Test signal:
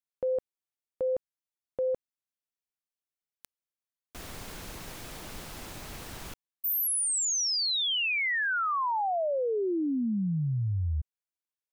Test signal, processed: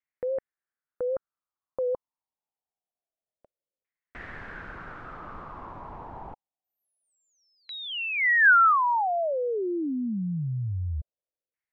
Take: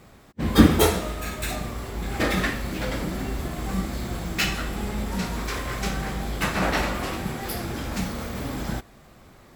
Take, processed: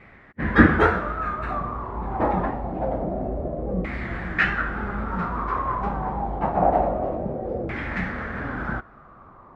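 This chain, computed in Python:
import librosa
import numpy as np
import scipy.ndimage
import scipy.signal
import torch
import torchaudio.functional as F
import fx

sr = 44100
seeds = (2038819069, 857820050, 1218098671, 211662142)

y = fx.vibrato(x, sr, rate_hz=3.6, depth_cents=69.0)
y = fx.filter_lfo_lowpass(y, sr, shape='saw_down', hz=0.26, low_hz=510.0, high_hz=2100.0, q=5.2)
y = y * librosa.db_to_amplitude(-1.0)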